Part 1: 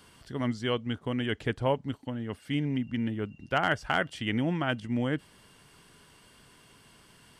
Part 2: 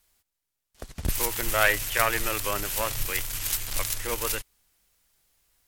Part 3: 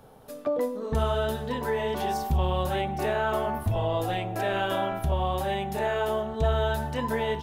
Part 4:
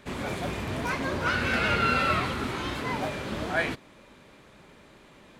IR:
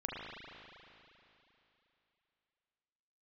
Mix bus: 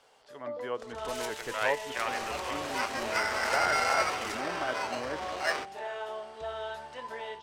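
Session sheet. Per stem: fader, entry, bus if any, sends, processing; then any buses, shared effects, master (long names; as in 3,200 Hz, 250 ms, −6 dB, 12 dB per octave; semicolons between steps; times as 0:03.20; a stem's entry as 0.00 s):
−8.5 dB, 0.00 s, no send, treble cut that deepens with the level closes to 1,300 Hz, closed at −28 dBFS; automatic gain control gain up to 8 dB
+2.0 dB, 0.00 s, no send, automatic ducking −11 dB, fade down 1.55 s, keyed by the first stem
−8.5 dB, 0.00 s, no send, no processing
−2.5 dB, 1.90 s, no send, parametric band 70 Hz +8 dB; sample-rate reduction 3,500 Hz, jitter 0%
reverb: not used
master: three-way crossover with the lows and the highs turned down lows −21 dB, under 430 Hz, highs −22 dB, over 7,800 Hz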